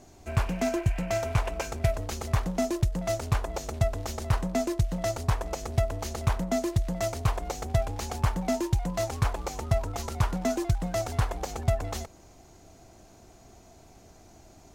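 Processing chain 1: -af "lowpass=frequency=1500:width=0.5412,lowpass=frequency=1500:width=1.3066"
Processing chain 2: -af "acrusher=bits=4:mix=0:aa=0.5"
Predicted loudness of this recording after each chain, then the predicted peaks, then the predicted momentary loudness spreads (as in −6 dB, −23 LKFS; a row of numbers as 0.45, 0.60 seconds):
−30.0, −29.5 LKFS; −12.0, −11.0 dBFS; 5, 4 LU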